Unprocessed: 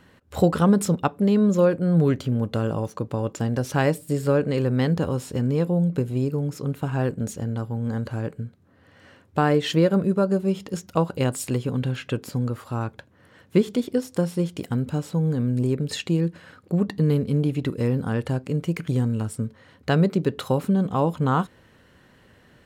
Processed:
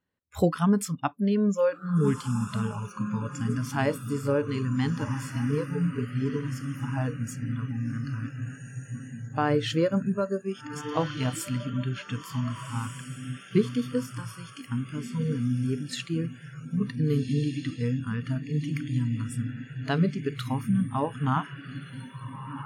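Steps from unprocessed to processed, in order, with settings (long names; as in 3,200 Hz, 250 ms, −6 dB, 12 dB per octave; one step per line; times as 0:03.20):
feedback delay with all-pass diffusion 1,542 ms, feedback 56%, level −5.5 dB
noise reduction from a noise print of the clip's start 25 dB
level −4 dB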